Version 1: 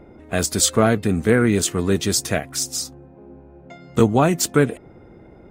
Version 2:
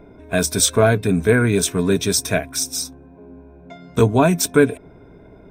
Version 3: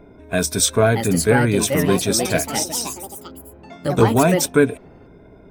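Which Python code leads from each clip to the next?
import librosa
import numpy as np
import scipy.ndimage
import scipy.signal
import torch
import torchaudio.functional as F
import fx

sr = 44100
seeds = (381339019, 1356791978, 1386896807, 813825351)

y1 = fx.ripple_eq(x, sr, per_octave=1.6, db=10)
y2 = fx.echo_pitch(y1, sr, ms=696, semitones=4, count=3, db_per_echo=-6.0)
y2 = F.gain(torch.from_numpy(y2), -1.0).numpy()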